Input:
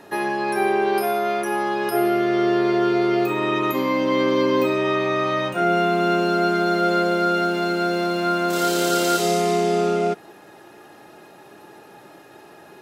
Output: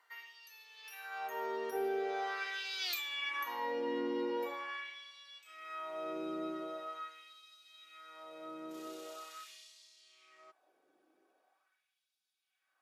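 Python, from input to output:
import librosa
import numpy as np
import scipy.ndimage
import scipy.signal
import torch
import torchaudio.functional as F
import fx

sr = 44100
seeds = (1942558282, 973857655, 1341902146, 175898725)

y = fx.doppler_pass(x, sr, speed_mps=35, closest_m=2.8, pass_at_s=2.91)
y = fx.filter_lfo_highpass(y, sr, shape='sine', hz=0.43, low_hz=310.0, high_hz=4100.0, q=1.8)
y = fx.rider(y, sr, range_db=4, speed_s=0.5)
y = F.gain(torch.from_numpy(y), 5.0).numpy()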